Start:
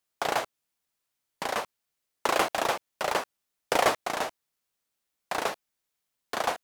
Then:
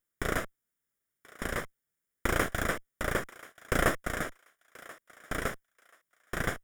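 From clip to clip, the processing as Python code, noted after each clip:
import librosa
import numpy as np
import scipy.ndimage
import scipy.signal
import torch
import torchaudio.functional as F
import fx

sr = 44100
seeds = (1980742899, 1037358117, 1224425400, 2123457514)

y = fx.lower_of_two(x, sr, delay_ms=0.57)
y = fx.peak_eq(y, sr, hz=4200.0, db=-13.5, octaves=0.82)
y = fx.echo_thinned(y, sr, ms=1033, feedback_pct=23, hz=730.0, wet_db=-18.5)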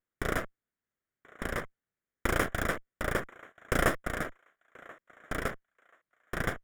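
y = fx.wiener(x, sr, points=9)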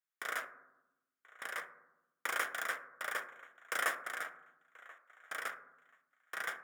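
y = scipy.signal.sosfilt(scipy.signal.butter(2, 1000.0, 'highpass', fs=sr, output='sos'), x)
y = fx.rev_fdn(y, sr, rt60_s=0.92, lf_ratio=1.55, hf_ratio=0.3, size_ms=37.0, drr_db=8.0)
y = y * librosa.db_to_amplitude(-3.5)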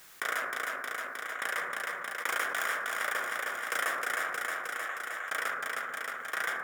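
y = fx.echo_feedback(x, sr, ms=312, feedback_pct=47, wet_db=-8.0)
y = fx.env_flatten(y, sr, amount_pct=70)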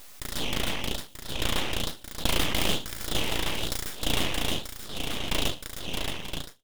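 y = fx.fade_out_tail(x, sr, length_s=0.58)
y = fx.filter_lfo_highpass(y, sr, shape='sine', hz=1.1, low_hz=320.0, high_hz=4700.0, q=1.1)
y = np.abs(y)
y = y * librosa.db_to_amplitude(8.0)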